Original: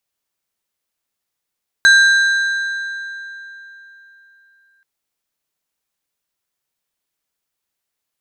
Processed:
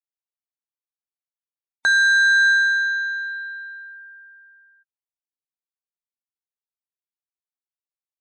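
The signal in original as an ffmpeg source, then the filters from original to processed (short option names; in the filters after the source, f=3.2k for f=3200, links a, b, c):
-f lavfi -i "aevalsrc='0.531*pow(10,-3*t/3.54)*sin(2*PI*1590*t)+0.2*pow(10,-3*t/2.689)*sin(2*PI*3975*t)+0.075*pow(10,-3*t/2.336)*sin(2*PI*6360*t)+0.0282*pow(10,-3*t/2.184)*sin(2*PI*7950*t)+0.0106*pow(10,-3*t/2.019)*sin(2*PI*10335*t)':d=2.98:s=44100"
-af "afftdn=nr=34:nf=-41,alimiter=limit=-14dB:level=0:latency=1,equalizer=f=820:w=1:g=12"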